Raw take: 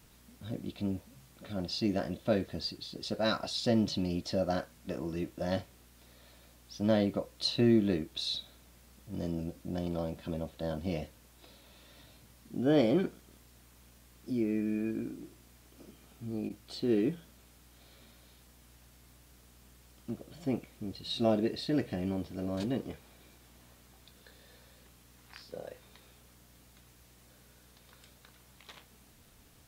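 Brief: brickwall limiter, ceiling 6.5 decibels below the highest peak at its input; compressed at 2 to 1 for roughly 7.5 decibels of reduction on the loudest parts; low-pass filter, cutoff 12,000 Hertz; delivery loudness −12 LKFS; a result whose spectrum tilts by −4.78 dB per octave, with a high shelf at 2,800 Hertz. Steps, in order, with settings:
low-pass filter 12,000 Hz
high-shelf EQ 2,800 Hz +8.5 dB
downward compressor 2 to 1, threshold −34 dBFS
level +26 dB
brickwall limiter 0 dBFS

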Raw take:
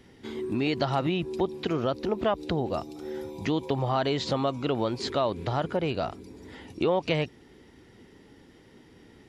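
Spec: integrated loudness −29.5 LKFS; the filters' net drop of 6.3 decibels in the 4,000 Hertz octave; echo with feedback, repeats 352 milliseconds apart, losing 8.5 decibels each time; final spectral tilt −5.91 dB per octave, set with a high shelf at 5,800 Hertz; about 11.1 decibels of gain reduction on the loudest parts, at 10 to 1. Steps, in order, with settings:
parametric band 4,000 Hz −5.5 dB
high-shelf EQ 5,800 Hz −9 dB
downward compressor 10 to 1, threshold −33 dBFS
repeating echo 352 ms, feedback 38%, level −8.5 dB
level +8.5 dB

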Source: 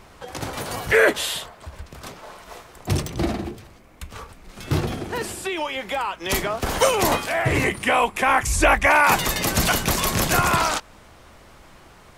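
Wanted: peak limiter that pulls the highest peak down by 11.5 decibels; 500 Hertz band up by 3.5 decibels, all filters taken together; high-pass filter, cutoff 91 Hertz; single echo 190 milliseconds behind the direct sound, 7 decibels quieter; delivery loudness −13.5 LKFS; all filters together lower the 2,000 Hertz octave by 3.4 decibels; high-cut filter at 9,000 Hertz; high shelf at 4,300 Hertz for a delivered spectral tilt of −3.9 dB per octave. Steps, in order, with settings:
high-pass filter 91 Hz
low-pass filter 9,000 Hz
parametric band 500 Hz +4.5 dB
parametric band 2,000 Hz −6.5 dB
high-shelf EQ 4,300 Hz +8 dB
brickwall limiter −14 dBFS
single-tap delay 190 ms −7 dB
level +10 dB

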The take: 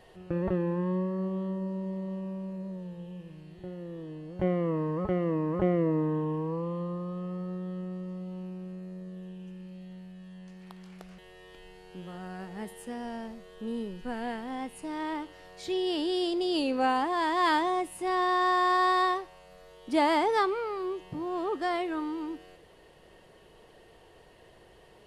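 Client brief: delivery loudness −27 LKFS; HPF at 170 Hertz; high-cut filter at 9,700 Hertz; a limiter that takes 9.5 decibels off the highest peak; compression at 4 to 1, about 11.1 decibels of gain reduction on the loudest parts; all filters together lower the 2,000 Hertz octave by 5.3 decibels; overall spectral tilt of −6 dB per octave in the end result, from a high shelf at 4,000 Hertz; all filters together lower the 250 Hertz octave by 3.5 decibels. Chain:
high-pass filter 170 Hz
low-pass filter 9,700 Hz
parametric band 250 Hz −4 dB
parametric band 2,000 Hz −4.5 dB
high-shelf EQ 4,000 Hz −9 dB
downward compressor 4 to 1, threshold −36 dBFS
level +16 dB
brickwall limiter −18.5 dBFS

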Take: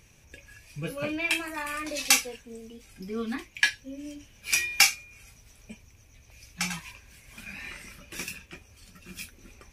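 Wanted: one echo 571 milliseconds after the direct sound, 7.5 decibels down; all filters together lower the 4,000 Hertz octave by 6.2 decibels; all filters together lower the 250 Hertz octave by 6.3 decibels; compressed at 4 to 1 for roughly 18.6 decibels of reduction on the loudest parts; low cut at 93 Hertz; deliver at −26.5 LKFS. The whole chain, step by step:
high-pass filter 93 Hz
parametric band 250 Hz −8 dB
parametric band 4,000 Hz −9 dB
downward compressor 4 to 1, threshold −42 dBFS
single-tap delay 571 ms −7.5 dB
level +18.5 dB

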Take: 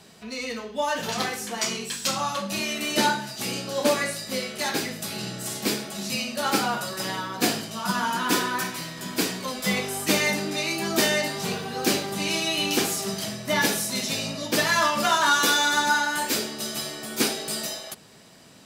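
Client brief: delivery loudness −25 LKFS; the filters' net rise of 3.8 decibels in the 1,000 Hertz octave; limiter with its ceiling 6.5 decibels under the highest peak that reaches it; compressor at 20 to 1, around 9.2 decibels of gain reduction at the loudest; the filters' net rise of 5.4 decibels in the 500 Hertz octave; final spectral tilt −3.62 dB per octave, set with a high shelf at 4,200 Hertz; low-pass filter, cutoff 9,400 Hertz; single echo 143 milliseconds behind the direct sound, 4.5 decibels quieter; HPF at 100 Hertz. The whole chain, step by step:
high-pass filter 100 Hz
low-pass filter 9,400 Hz
parametric band 500 Hz +6 dB
parametric band 1,000 Hz +3.5 dB
high-shelf EQ 4,200 Hz −8.5 dB
downward compressor 20 to 1, threshold −22 dBFS
brickwall limiter −19 dBFS
single-tap delay 143 ms −4.5 dB
level +3 dB

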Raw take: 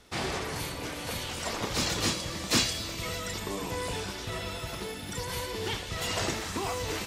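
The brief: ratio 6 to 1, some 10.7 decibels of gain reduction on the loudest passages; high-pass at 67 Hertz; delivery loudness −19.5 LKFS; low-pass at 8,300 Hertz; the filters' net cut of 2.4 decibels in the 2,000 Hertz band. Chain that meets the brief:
high-pass filter 67 Hz
low-pass filter 8,300 Hz
parametric band 2,000 Hz −3 dB
downward compressor 6 to 1, threshold −33 dBFS
level +17 dB

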